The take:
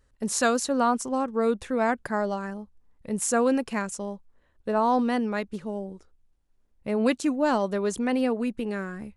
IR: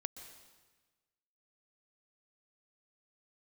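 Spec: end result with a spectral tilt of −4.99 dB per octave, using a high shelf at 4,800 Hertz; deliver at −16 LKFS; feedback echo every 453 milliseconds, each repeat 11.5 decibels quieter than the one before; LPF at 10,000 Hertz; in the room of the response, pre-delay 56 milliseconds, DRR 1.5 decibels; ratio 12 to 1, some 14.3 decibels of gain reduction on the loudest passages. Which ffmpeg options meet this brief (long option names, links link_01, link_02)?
-filter_complex "[0:a]lowpass=10000,highshelf=frequency=4800:gain=-8.5,acompressor=threshold=-33dB:ratio=12,aecho=1:1:453|906|1359:0.266|0.0718|0.0194,asplit=2[link_01][link_02];[1:a]atrim=start_sample=2205,adelay=56[link_03];[link_02][link_03]afir=irnorm=-1:irlink=0,volume=0.5dB[link_04];[link_01][link_04]amix=inputs=2:normalize=0,volume=19.5dB"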